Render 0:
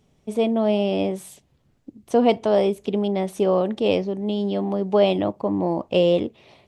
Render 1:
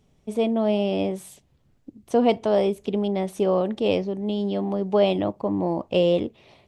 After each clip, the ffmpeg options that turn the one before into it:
-af "lowshelf=f=67:g=6.5,volume=-2dB"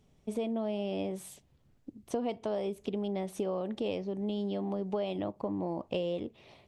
-af "acompressor=threshold=-27dB:ratio=6,volume=-3.5dB"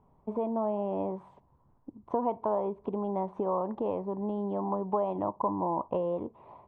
-af "lowpass=f=990:t=q:w=8.4"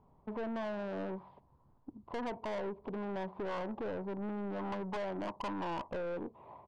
-af "aresample=11025,aresample=44100,aeval=exprs='(tanh(50.1*val(0)+0.2)-tanh(0.2))/50.1':c=same,volume=-1dB"

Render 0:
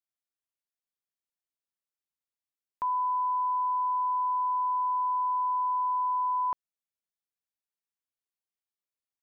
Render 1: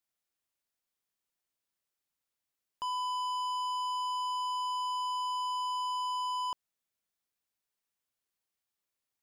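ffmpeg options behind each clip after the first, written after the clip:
-af "asoftclip=type=tanh:threshold=-38.5dB,volume=5.5dB"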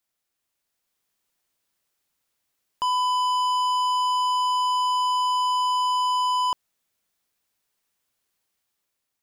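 -af "dynaudnorm=f=310:g=5:m=4.5dB,volume=6.5dB"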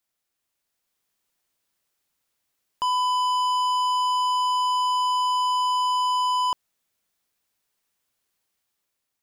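-af anull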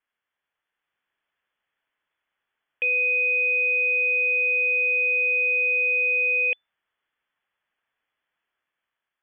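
-af "equalizer=f=1.8k:w=2.2:g=6.5,lowpass=f=3k:t=q:w=0.5098,lowpass=f=3k:t=q:w=0.6013,lowpass=f=3k:t=q:w=0.9,lowpass=f=3k:t=q:w=2.563,afreqshift=-3500"

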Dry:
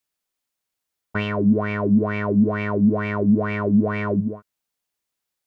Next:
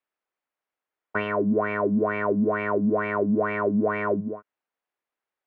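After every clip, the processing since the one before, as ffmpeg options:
-filter_complex "[0:a]acrossover=split=290 2400:gain=0.178 1 0.0794[a][b][c];[a][b][c]amix=inputs=3:normalize=0,volume=2dB"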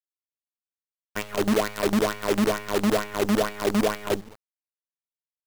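-af "agate=range=-33dB:threshold=-19dB:ratio=3:detection=peak,acrusher=bits=5:dc=4:mix=0:aa=0.000001,volume=2dB"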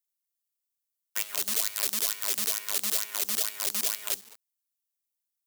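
-filter_complex "[0:a]acrossover=split=180|3000[a][b][c];[b]acompressor=threshold=-28dB:ratio=4[d];[a][d][c]amix=inputs=3:normalize=0,aderivative,volume=8dB"

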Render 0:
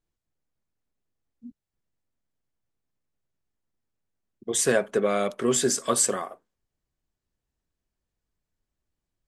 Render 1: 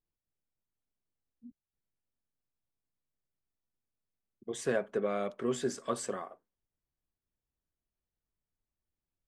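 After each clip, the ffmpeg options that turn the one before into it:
-af "aemphasis=mode=reproduction:type=75kf,volume=-8dB"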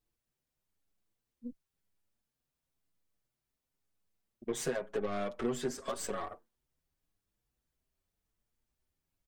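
-filter_complex "[0:a]acompressor=threshold=-38dB:ratio=6,aeval=exprs='0.0355*(cos(1*acos(clip(val(0)/0.0355,-1,1)))-cos(1*PI/2))+0.00282*(cos(8*acos(clip(val(0)/0.0355,-1,1)))-cos(8*PI/2))':c=same,asplit=2[a][b];[b]adelay=6.6,afreqshift=0.96[c];[a][c]amix=inputs=2:normalize=1,volume=8.5dB"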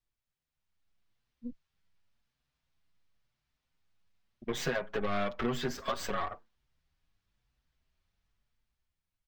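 -filter_complex "[0:a]equalizer=f=380:t=o:w=1.9:g=-9.5,acrossover=split=5500[a][b];[a]dynaudnorm=f=150:g=11:m=10.5dB[c];[b]aeval=exprs='abs(val(0))':c=same[d];[c][d]amix=inputs=2:normalize=0,volume=-2dB"

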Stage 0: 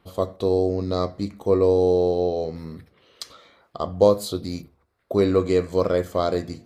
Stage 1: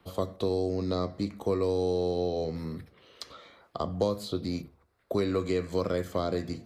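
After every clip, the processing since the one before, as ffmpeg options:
-filter_complex "[0:a]acrossover=split=110|320|1200|4600[a][b][c][d][e];[a]acompressor=threshold=-43dB:ratio=4[f];[b]acompressor=threshold=-31dB:ratio=4[g];[c]acompressor=threshold=-32dB:ratio=4[h];[d]acompressor=threshold=-40dB:ratio=4[i];[e]acompressor=threshold=-52dB:ratio=4[j];[f][g][h][i][j]amix=inputs=5:normalize=0"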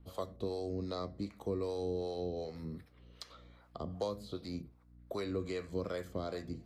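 -filter_complex "[0:a]aeval=exprs='val(0)+0.00316*(sin(2*PI*60*n/s)+sin(2*PI*2*60*n/s)/2+sin(2*PI*3*60*n/s)/3+sin(2*PI*4*60*n/s)/4+sin(2*PI*5*60*n/s)/5)':c=same,acrossover=split=490[a][b];[a]aeval=exprs='val(0)*(1-0.7/2+0.7/2*cos(2*PI*2.6*n/s))':c=same[c];[b]aeval=exprs='val(0)*(1-0.7/2-0.7/2*cos(2*PI*2.6*n/s))':c=same[d];[c][d]amix=inputs=2:normalize=0,volume=-5.5dB"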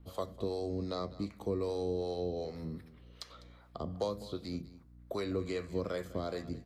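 -af "aecho=1:1:201:0.133,volume=2dB"

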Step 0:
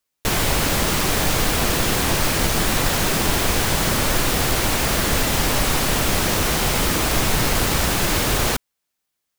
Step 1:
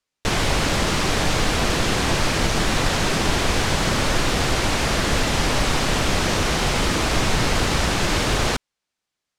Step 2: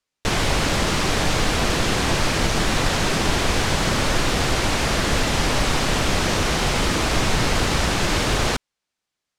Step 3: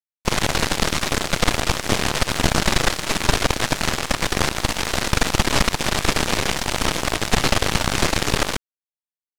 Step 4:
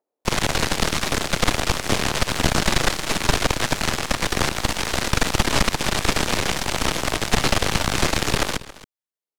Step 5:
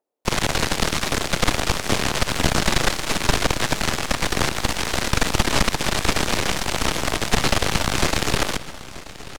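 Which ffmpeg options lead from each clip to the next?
-af "lowpass=6.7k"
-af anull
-af "aeval=exprs='0.531*(cos(1*acos(clip(val(0)/0.531,-1,1)))-cos(1*PI/2))+0.168*(cos(4*acos(clip(val(0)/0.531,-1,1)))-cos(4*PI/2))+0.0841*(cos(7*acos(clip(val(0)/0.531,-1,1)))-cos(7*PI/2))':c=same,aeval=exprs='sgn(val(0))*max(abs(val(0))-0.00562,0)':c=same"
-filter_complex "[0:a]aecho=1:1:274:0.126,acrossover=split=400|560|3900[a][b][c][d];[b]acompressor=mode=upward:threshold=-55dB:ratio=2.5[e];[a][e][c][d]amix=inputs=4:normalize=0,volume=-1dB"
-af "aecho=1:1:932|1864|2796|3728:0.133|0.0667|0.0333|0.0167"

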